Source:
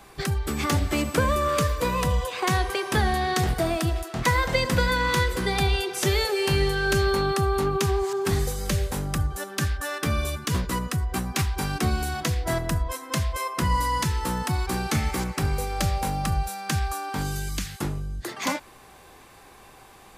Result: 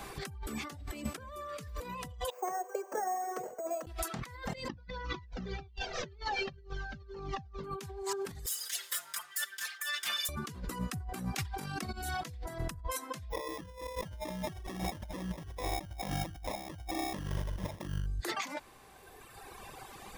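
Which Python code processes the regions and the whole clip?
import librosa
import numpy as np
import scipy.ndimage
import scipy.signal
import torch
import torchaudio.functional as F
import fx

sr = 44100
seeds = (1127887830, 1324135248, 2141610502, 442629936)

y = fx.chain(x, sr, fx.ladder_bandpass(hz=600.0, resonance_pct=60),
    fx.resample_bad(factor=6, down='filtered', up='hold'), at=(2.3, 3.87))
y = fx.chain(y, sr, fx.delta_mod(bps=32000, step_db=-27.0),
    fx.tilt_eq(slope=-2.5),
    fx.comb_cascade(direction='falling', hz=1.9), at=(4.68, 7.64))
y = fx.chain(y, sr, fx.lower_of_two(delay_ms=0.58),
    fx.bessel_highpass(hz=2200.0, order=2),
    fx.comb(ms=5.7, depth=0.86), at=(8.46, 10.29))
y = fx.chain(y, sr, fx.highpass(hz=65.0, slope=12),
    fx.over_compress(threshold_db=-27.0, ratio=-0.5), at=(10.94, 11.94))
y = fx.chain(y, sr, fx.sample_hold(seeds[0], rate_hz=1500.0, jitter_pct=0),
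    fx.ripple_eq(per_octave=1.2, db=8), at=(13.3, 18.06))
y = fx.dereverb_blind(y, sr, rt60_s=2.0)
y = fx.over_compress(y, sr, threshold_db=-37.0, ratio=-1.0)
y = y * 10.0 ** (-4.0 / 20.0)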